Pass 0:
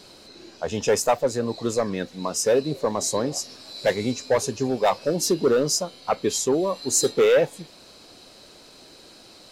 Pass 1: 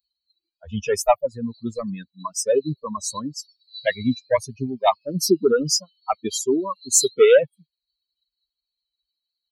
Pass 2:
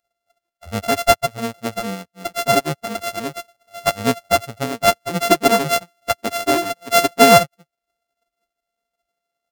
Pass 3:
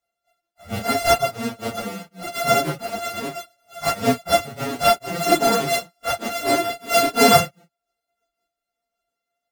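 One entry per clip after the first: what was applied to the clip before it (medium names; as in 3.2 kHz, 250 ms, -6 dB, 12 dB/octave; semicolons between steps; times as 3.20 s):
expander on every frequency bin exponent 3; trim +8 dB
sorted samples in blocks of 64 samples; trim +3 dB
phase randomisation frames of 100 ms; trim -2 dB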